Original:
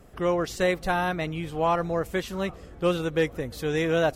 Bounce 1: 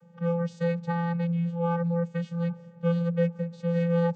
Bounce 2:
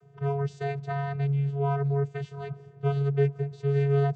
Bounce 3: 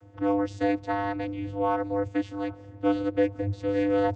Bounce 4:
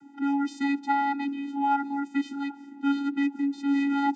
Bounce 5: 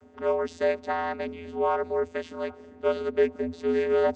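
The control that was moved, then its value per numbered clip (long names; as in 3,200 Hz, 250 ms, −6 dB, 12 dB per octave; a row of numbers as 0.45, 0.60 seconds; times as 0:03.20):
channel vocoder, frequency: 170, 140, 100, 280, 84 Hertz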